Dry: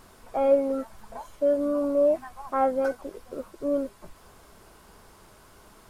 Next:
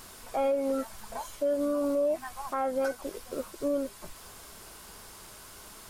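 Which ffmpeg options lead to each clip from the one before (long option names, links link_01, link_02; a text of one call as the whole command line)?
ffmpeg -i in.wav -af "highshelf=frequency=2100:gain=11.5,alimiter=limit=-21dB:level=0:latency=1:release=193" out.wav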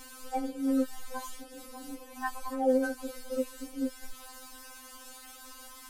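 ffmpeg -i in.wav -af "afftfilt=real='re*3.46*eq(mod(b,12),0)':imag='im*3.46*eq(mod(b,12),0)':win_size=2048:overlap=0.75,volume=2dB" out.wav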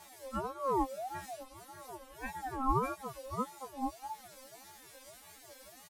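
ffmpeg -i in.wav -filter_complex "[0:a]asplit=2[link_01][link_02];[link_02]adelay=19,volume=-3dB[link_03];[link_01][link_03]amix=inputs=2:normalize=0,aeval=exprs='val(0)*sin(2*PI*700*n/s+700*0.25/1.7*sin(2*PI*1.7*n/s))':channel_layout=same,volume=-5dB" out.wav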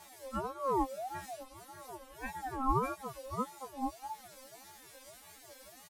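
ffmpeg -i in.wav -af anull out.wav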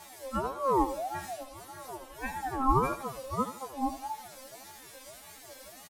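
ffmpeg -i in.wav -af "aecho=1:1:79|158|237:0.251|0.0779|0.0241,volume=5dB" out.wav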